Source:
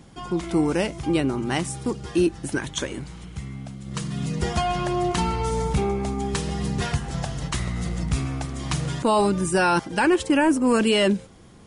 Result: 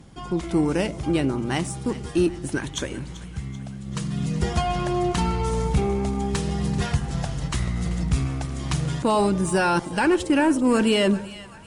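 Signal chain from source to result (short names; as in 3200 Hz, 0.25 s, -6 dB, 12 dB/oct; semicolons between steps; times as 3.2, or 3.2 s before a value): added harmonics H 6 -32 dB, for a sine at -11 dBFS; low shelf 180 Hz +5 dB; split-band echo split 720 Hz, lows 95 ms, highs 0.386 s, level -16 dB; gain -1.5 dB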